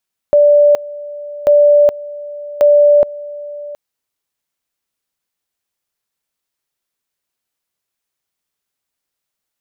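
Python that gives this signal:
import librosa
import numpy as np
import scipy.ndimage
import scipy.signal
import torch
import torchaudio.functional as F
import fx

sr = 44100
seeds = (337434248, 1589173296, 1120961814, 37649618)

y = fx.two_level_tone(sr, hz=585.0, level_db=-5.0, drop_db=19.5, high_s=0.42, low_s=0.72, rounds=3)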